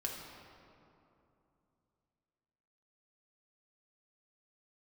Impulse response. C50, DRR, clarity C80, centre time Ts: 2.0 dB, −2.5 dB, 3.5 dB, 91 ms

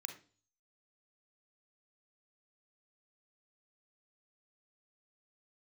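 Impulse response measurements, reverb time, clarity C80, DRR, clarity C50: 0.40 s, 15.0 dB, 5.5 dB, 9.0 dB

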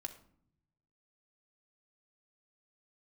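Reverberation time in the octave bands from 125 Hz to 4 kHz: 1.5, 1.1, 0.65, 0.60, 0.45, 0.40 seconds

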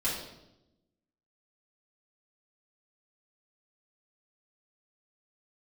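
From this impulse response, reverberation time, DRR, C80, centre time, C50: 0.90 s, −9.0 dB, 6.0 dB, 50 ms, 2.5 dB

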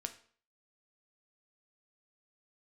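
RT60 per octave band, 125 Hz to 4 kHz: 0.45, 0.50, 0.50, 0.50, 0.45, 0.45 seconds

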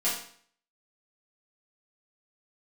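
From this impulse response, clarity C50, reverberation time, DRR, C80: 4.0 dB, 0.55 s, −10.0 dB, 8.0 dB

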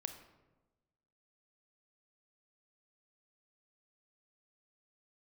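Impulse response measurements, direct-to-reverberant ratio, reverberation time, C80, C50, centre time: 7.0 dB, 1.1 s, 11.0 dB, 9.0 dB, 15 ms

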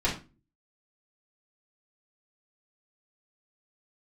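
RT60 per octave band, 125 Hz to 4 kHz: 0.55, 0.50, 0.35, 0.30, 0.30, 0.25 seconds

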